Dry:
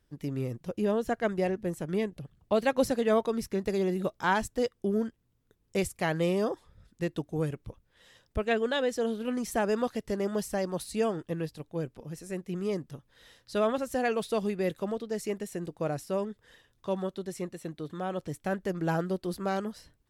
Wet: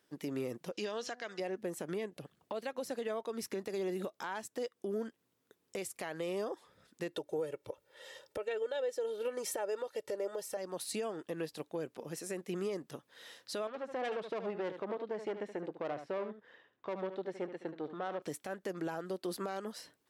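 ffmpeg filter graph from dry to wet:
-filter_complex "[0:a]asettb=1/sr,asplit=3[s0][s1][s2];[s0]atrim=end=0.724[s3];[s1]atrim=start=0.72:end=1.4,asetpts=PTS-STARTPTS,afade=t=in:d=0.004:c=qsin,afade=t=out:st=0.676:d=0.004:c=qsin,lowpass=f=5300:t=q:w=2.4,tiltshelf=f=970:g=-6.5,bandreject=f=246.1:t=h:w=4,bandreject=f=492.2:t=h:w=4,bandreject=f=738.3:t=h:w=4,bandreject=f=984.4:t=h:w=4,bandreject=f=1230.5:t=h:w=4,bandreject=f=1476.6:t=h:w=4,bandreject=f=1722.7:t=h:w=4,bandreject=f=1968.8:t=h:w=4[s4];[s2]atrim=start=1.396[s5];[s3][s4]acrossfade=d=0.004:c1=hsin:c2=qsin[s6];[s6][s5]acrossfade=d=0.004:c1=qsin:c2=hsin,asettb=1/sr,asplit=3[s7][s8][s9];[s7]atrim=end=7.144[s10];[s8]atrim=start=7.14:end=10.57,asetpts=PTS-STARTPTS,afade=t=in:d=0.004:c=qsin,afade=t=out:st=3.426:d=0.004:c=qsin,equalizer=f=600:t=o:w=0.38:g=11.5,aecho=1:1:2.2:0.72,atrim=end_sample=151263[s11];[s9]atrim=start=10.566[s12];[s10][s11]acrossfade=d=0.004:c1=hsin:c2=qsin[s13];[s13][s12]acrossfade=d=0.004:c1=qsin:c2=hsin,asettb=1/sr,asplit=3[s14][s15][s16];[s14]atrim=end=13.674[s17];[s15]atrim=start=13.67:end=18.22,asetpts=PTS-STARTPTS,afade=t=in:d=0.004:c=qsin,afade=t=out:st=4.546:d=0.004:c=qsin,lowpass=2200,aeval=exprs='(tanh(31.6*val(0)+0.65)-tanh(0.65))/31.6':c=same,aecho=1:1:74:0.251,atrim=end_sample=200655[s18];[s16]atrim=start=18.216[s19];[s17][s18]acrossfade=d=0.004:c1=hsin:c2=qsin[s20];[s20][s19]acrossfade=d=0.004:c1=qsin:c2=hsin,highpass=310,acompressor=threshold=0.0158:ratio=10,alimiter=level_in=2.51:limit=0.0631:level=0:latency=1:release=64,volume=0.398,volume=1.58"

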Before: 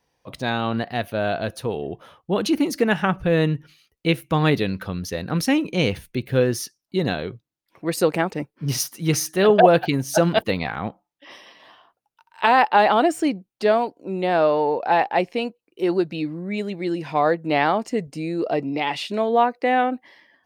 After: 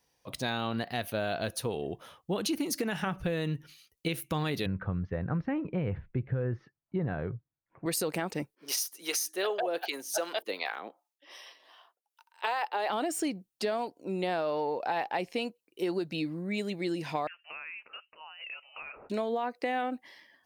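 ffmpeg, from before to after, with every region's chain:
-filter_complex "[0:a]asettb=1/sr,asplit=3[s0][s1][s2];[s0]atrim=end=4.664[s3];[s1]atrim=start=4.66:end=7.86,asetpts=PTS-STARTPTS,afade=t=in:d=0.004:c=qsin,afade=t=out:st=3.196:d=0.004:c=qsin,lowpass=f=1700:w=0.5412,lowpass=f=1700:w=1.3066,lowshelf=f=180:t=q:w=1.5:g=6[s4];[s2]atrim=start=7.856[s5];[s3][s4]acrossfade=d=0.004:c1=hsin:c2=qsin[s6];[s6][s5]acrossfade=d=0.004:c1=qsin:c2=hsin,asettb=1/sr,asplit=3[s7][s8][s9];[s7]atrim=end=8.554[s10];[s8]atrim=start=8.55:end=12.9,asetpts=PTS-STARTPTS,afade=t=in:d=0.004:c=qsin,afade=t=out:st=4.346:d=0.004:c=qsin,highpass=f=360:w=0.5412,highpass=f=360:w=1.3066,acrossover=split=430[s11][s12];[s11]aeval=exprs='val(0)*(1-0.7/2+0.7/2*cos(2*PI*2.6*n/s))':c=same[s13];[s12]aeval=exprs='val(0)*(1-0.7/2-0.7/2*cos(2*PI*2.6*n/s))':c=same[s14];[s13][s14]amix=inputs=2:normalize=0[s15];[s9]atrim=start=12.896[s16];[s10][s15]acrossfade=d=0.004:c1=hsin:c2=qsin[s17];[s17][s16]acrossfade=d=0.004:c1=qsin:c2=hsin,asettb=1/sr,asplit=3[s18][s19][s20];[s18]atrim=end=17.274[s21];[s19]atrim=start=17.27:end=19.1,asetpts=PTS-STARTPTS,afade=t=in:d=0.004:c=qsin,afade=t=out:st=1.826:d=0.004:c=qsin,highpass=f=730:w=0.5412,highpass=f=730:w=1.3066,acompressor=threshold=0.0158:ratio=8:attack=3.2:release=140:knee=1:detection=peak,lowpass=f=2800:t=q:w=0.5098,lowpass=f=2800:t=q:w=0.6013,lowpass=f=2800:t=q:w=0.9,lowpass=f=2800:t=q:w=2.563,afreqshift=-3300[s22];[s20]atrim=start=19.096[s23];[s21][s22]acrossfade=d=0.004:c1=hsin:c2=qsin[s24];[s24][s23]acrossfade=d=0.004:c1=qsin:c2=hsin,highshelf=f=4100:g=11,alimiter=limit=0.266:level=0:latency=1:release=33,acompressor=threshold=0.0794:ratio=6,volume=0.531"

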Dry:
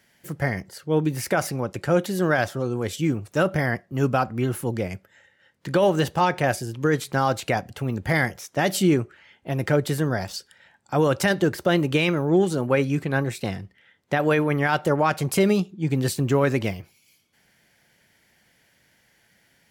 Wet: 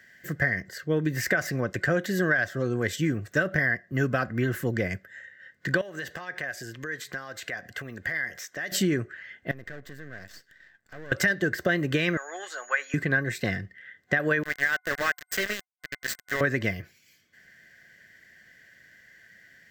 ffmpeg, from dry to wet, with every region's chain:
-filter_complex "[0:a]asettb=1/sr,asplit=3[s0][s1][s2];[s0]atrim=end=5.814[s3];[s1]atrim=start=5.81:end=8.72,asetpts=PTS-STARTPTS,afade=t=in:d=0.004:c=qsin,afade=t=out:st=2.906:d=0.004:c=qsin,lowshelf=f=320:g=-11,acompressor=threshold=0.02:ratio=10:attack=3.2:release=140:knee=1:detection=peak[s4];[s2]atrim=start=8.716[s5];[s3][s4]acrossfade=d=0.004:c1=hsin:c2=qsin[s6];[s6][s5]acrossfade=d=0.004:c1=qsin:c2=hsin,asettb=1/sr,asplit=3[s7][s8][s9];[s7]atrim=end=9.514[s10];[s8]atrim=start=9.51:end=11.12,asetpts=PTS-STARTPTS,afade=t=in:d=0.004:c=qsin,afade=t=out:st=1.606:d=0.004:c=qsin,acompressor=threshold=0.0141:ratio=2:attack=3.2:release=140:knee=1:detection=peak,aeval=exprs='max(val(0),0)':c=same,aeval=exprs='(tanh(10*val(0)+0.8)-tanh(0.8))/10':c=same[s11];[s9]atrim=start=11.116[s12];[s10][s11]acrossfade=d=0.004:c1=hsin:c2=qsin[s13];[s13][s12]acrossfade=d=0.004:c1=qsin:c2=hsin,asettb=1/sr,asplit=3[s14][s15][s16];[s14]atrim=end=12.174[s17];[s15]atrim=start=12.17:end=12.94,asetpts=PTS-STARTPTS,afade=t=in:d=0.004:c=qsin,afade=t=out:st=0.766:d=0.004:c=qsin,highpass=f=790:w=0.5412,highpass=f=790:w=1.3066,aemphasis=mode=reproduction:type=50kf,aeval=exprs='val(0)+0.00398*sin(2*PI*6800*n/s)':c=same[s18];[s16]atrim=start=12.936[s19];[s17][s18]acrossfade=d=0.004:c1=hsin:c2=qsin[s20];[s20][s19]acrossfade=d=0.004:c1=qsin:c2=hsin,asettb=1/sr,asplit=3[s21][s22][s23];[s21]atrim=end=14.434[s24];[s22]atrim=start=14.43:end=16.41,asetpts=PTS-STARTPTS,afade=t=in:d=0.004:c=qsin,afade=t=out:st=1.976:d=0.004:c=qsin,highpass=f=1300:p=1,aeval=exprs='val(0)*gte(abs(val(0)),0.0447)':c=same[s25];[s23]atrim=start=16.406[s26];[s24][s25]acrossfade=d=0.004:c1=hsin:c2=qsin[s27];[s27][s26]acrossfade=d=0.004:c1=qsin:c2=hsin,superequalizer=9b=0.355:11b=3.98:16b=0.282,acompressor=threshold=0.0891:ratio=6"

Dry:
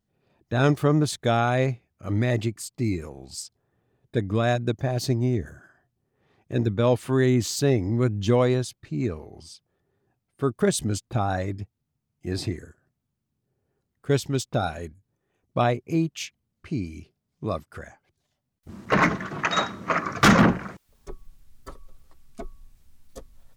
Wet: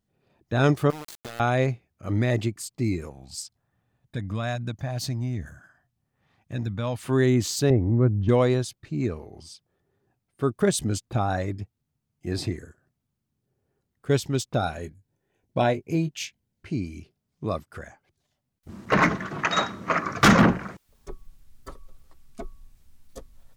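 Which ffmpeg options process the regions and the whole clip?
-filter_complex "[0:a]asettb=1/sr,asplit=3[s0][s1][s2];[s0]atrim=end=0.904[s3];[s1]atrim=start=0.9:end=1.4,asetpts=PTS-STARTPTS,afade=t=in:d=0.004:c=qsin,afade=t=out:st=0.496:d=0.004:c=qsin,lowshelf=f=290:g=-4,acompressor=threshold=0.0251:ratio=10:attack=3.2:release=140:knee=1:detection=peak,aeval=exprs='val(0)*gte(abs(val(0)),0.0266)':c=same[s4];[s2]atrim=start=1.396[s5];[s3][s4]acrossfade=d=0.004:c1=hsin:c2=qsin[s6];[s6][s5]acrossfade=d=0.004:c1=qsin:c2=hsin,asettb=1/sr,asplit=3[s7][s8][s9];[s7]atrim=end=3.104[s10];[s8]atrim=start=3.1:end=7.04,asetpts=PTS-STARTPTS,afade=t=in:d=0.004:c=qsin,afade=t=out:st=3.936:d=0.004:c=qsin,equalizer=f=400:t=o:w=0.75:g=-13,acompressor=threshold=0.0447:ratio=2:attack=3.2:release=140:knee=1:detection=peak[s11];[s9]atrim=start=7.036[s12];[s10][s11]acrossfade=d=0.004:c1=hsin:c2=qsin[s13];[s13][s12]acrossfade=d=0.004:c1=qsin:c2=hsin,asettb=1/sr,asplit=3[s14][s15][s16];[s14]atrim=end=7.704[s17];[s15]atrim=start=7.7:end=8.29,asetpts=PTS-STARTPTS,afade=t=in:d=0.004:c=qsin,afade=t=out:st=0.586:d=0.004:c=qsin,lowpass=1200,lowshelf=f=83:g=11[s18];[s16]atrim=start=8.286[s19];[s17][s18]acrossfade=d=0.004:c1=hsin:c2=qsin[s20];[s20][s19]acrossfade=d=0.004:c1=qsin:c2=hsin,asettb=1/sr,asplit=3[s21][s22][s23];[s21]atrim=end=14.824[s24];[s22]atrim=start=14.82:end=16.75,asetpts=PTS-STARTPTS,afade=t=in:d=0.004:c=qsin,afade=t=out:st=1.926:d=0.004:c=qsin,asuperstop=centerf=1200:order=4:qfactor=5.6,asplit=2[s25][s26];[s26]adelay=20,volume=0.316[s27];[s25][s27]amix=inputs=2:normalize=0,atrim=end_sample=85113[s28];[s23]atrim=start=16.746[s29];[s24][s28]acrossfade=d=0.004:c1=hsin:c2=qsin[s30];[s30][s29]acrossfade=d=0.004:c1=qsin:c2=hsin"

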